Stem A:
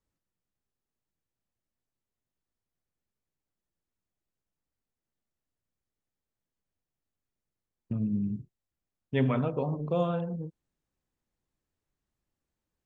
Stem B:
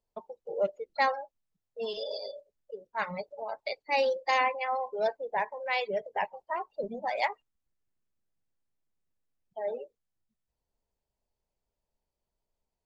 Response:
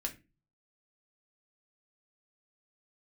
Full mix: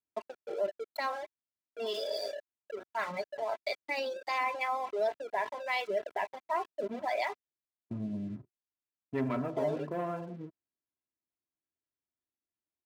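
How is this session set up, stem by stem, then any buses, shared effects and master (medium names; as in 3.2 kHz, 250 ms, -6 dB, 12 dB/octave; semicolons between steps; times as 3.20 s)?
-10.0 dB, 0.00 s, no send, steep low-pass 2.5 kHz; waveshaping leveller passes 2
-3.5 dB, 0.00 s, no send, peak limiter -21.5 dBFS, peak gain reduction 7 dB; crossover distortion -50.5 dBFS; level flattener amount 50%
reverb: none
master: high-pass 120 Hz 12 dB/octave; comb 3 ms, depth 53%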